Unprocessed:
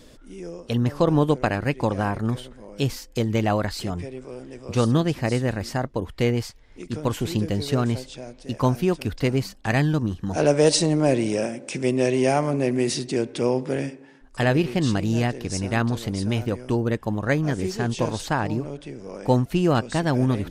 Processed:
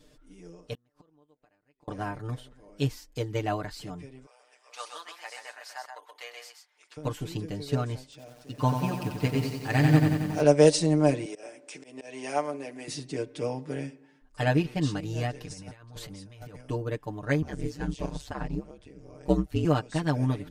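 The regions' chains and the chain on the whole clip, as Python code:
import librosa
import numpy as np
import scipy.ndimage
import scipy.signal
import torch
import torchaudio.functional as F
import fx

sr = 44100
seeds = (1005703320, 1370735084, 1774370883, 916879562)

y = fx.chain(x, sr, fx.highpass(hz=48.0, slope=6),
    fx.peak_eq(hz=120.0, db=-9.0, octaves=1.3),
    fx.gate_flip(shuts_db=-23.0, range_db=-34), at=(0.73, 1.88))
y = fx.chain(y, sr, fx.highpass(hz=760.0, slope=24),
    fx.echo_single(ms=128, db=-5.0), at=(4.26, 6.97))
y = fx.chain(y, sr, fx.highpass(hz=43.0, slope=24),
    fx.notch(hz=6300.0, q=30.0),
    fx.echo_crushed(ms=91, feedback_pct=80, bits=7, wet_db=-4), at=(8.03, 10.41))
y = fx.chain(y, sr, fx.highpass(hz=370.0, slope=12),
    fx.auto_swell(attack_ms=158.0), at=(11.25, 12.88))
y = fx.chain(y, sr, fx.peak_eq(hz=320.0, db=-6.0, octaves=1.4),
    fx.over_compress(threshold_db=-31.0, ratio=-0.5), at=(15.33, 16.61))
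y = fx.chain(y, sr, fx.ring_mod(carrier_hz=68.0),
    fx.low_shelf(hz=130.0, db=10.0), at=(17.42, 19.65))
y = y + 0.96 * np.pad(y, (int(6.7 * sr / 1000.0), 0))[:len(y)]
y = fx.upward_expand(y, sr, threshold_db=-25.0, expansion=1.5)
y = y * 10.0 ** (-5.0 / 20.0)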